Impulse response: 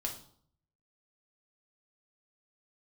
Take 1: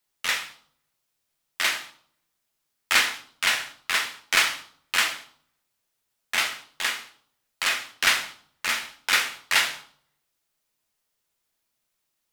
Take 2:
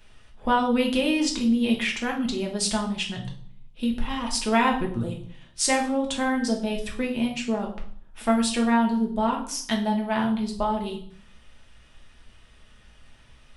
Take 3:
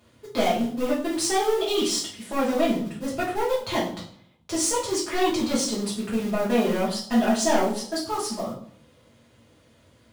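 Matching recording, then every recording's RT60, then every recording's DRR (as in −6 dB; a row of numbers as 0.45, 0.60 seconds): 2; 0.60, 0.60, 0.60 seconds; 5.5, 0.0, −7.5 decibels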